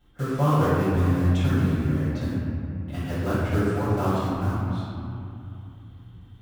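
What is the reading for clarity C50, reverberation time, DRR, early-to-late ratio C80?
−3.5 dB, 2.7 s, −12.5 dB, −1.0 dB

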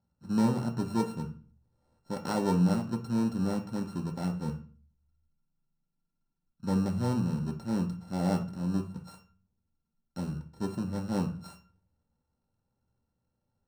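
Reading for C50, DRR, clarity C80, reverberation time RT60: 11.5 dB, 3.0 dB, 17.0 dB, 0.40 s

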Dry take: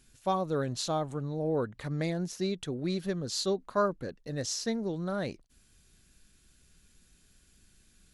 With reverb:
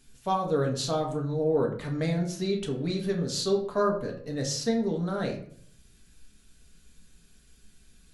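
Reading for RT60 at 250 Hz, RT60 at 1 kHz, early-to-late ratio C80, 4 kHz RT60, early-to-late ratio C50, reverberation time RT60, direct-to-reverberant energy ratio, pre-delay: 0.75 s, 0.50 s, 11.5 dB, 0.40 s, 8.0 dB, 0.60 s, 0.0 dB, 4 ms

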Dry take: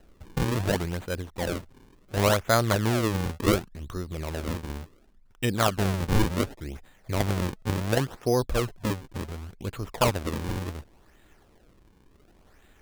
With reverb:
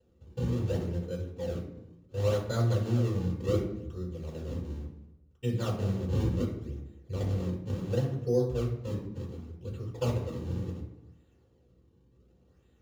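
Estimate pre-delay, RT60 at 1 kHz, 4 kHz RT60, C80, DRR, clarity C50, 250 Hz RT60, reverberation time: 3 ms, 0.85 s, 0.60 s, 8.5 dB, −12.5 dB, 6.0 dB, 1.0 s, 0.90 s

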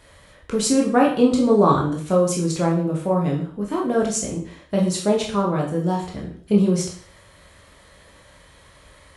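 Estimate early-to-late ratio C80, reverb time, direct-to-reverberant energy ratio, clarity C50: 10.5 dB, 0.50 s, −2.5 dB, 6.0 dB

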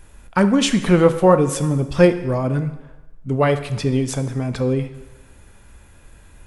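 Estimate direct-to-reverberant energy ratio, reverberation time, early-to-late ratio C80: 9.5 dB, 1.1 s, 13.5 dB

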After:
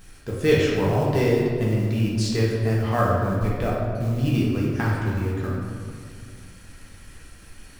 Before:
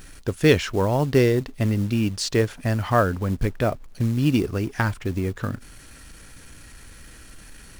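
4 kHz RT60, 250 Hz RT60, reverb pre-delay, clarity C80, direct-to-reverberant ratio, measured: 1.1 s, 2.6 s, 3 ms, 1.5 dB, −5.5 dB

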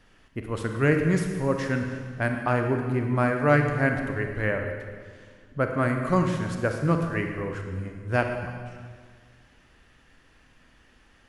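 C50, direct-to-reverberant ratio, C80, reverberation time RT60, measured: 4.5 dB, 4.0 dB, 6.0 dB, 1.8 s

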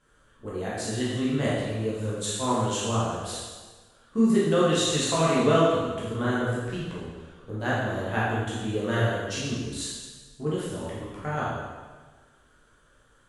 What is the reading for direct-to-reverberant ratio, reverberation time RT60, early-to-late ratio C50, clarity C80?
−8.0 dB, 1.4 s, −1.5 dB, 1.5 dB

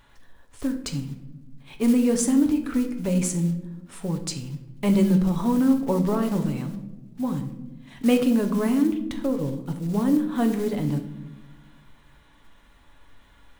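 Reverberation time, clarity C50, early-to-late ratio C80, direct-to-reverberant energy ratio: non-exponential decay, 10.5 dB, 12.5 dB, 5.0 dB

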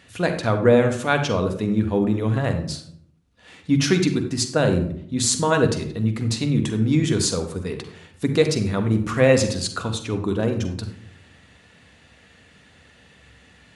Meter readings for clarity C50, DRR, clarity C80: 8.5 dB, 5.0 dB, 11.5 dB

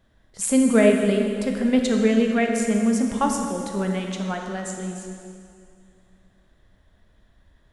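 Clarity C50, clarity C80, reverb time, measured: 3.0 dB, 4.5 dB, 2.4 s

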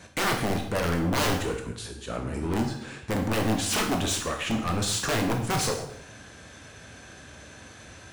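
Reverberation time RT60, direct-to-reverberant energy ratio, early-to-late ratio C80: 0.70 s, 2.0 dB, 9.5 dB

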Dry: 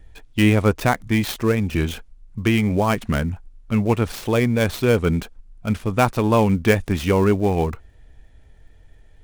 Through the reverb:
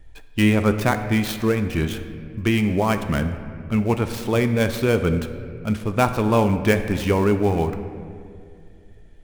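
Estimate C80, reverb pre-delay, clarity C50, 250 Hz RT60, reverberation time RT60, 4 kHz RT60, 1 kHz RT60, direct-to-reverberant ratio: 11.0 dB, 3 ms, 9.5 dB, 2.9 s, 2.4 s, 1.4 s, 2.1 s, 8.0 dB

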